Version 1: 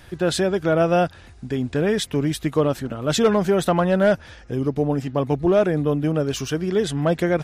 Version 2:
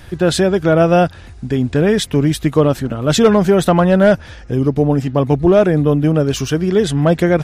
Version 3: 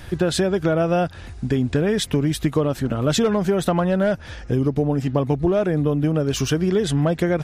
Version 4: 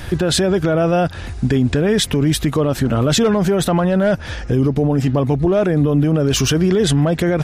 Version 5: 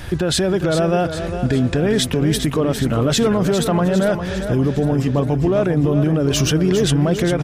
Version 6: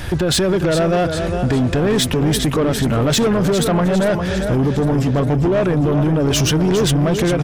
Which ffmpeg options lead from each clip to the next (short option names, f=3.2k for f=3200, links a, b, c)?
-af "lowshelf=f=210:g=5,volume=5.5dB"
-af "acompressor=threshold=-16dB:ratio=6"
-af "alimiter=limit=-16dB:level=0:latency=1:release=17,volume=8.5dB"
-af "aecho=1:1:403|806|1209|1612|2015|2418:0.355|0.185|0.0959|0.0499|0.0259|0.0135,volume=-2dB"
-af "asoftclip=type=tanh:threshold=-16.5dB,volume=5dB"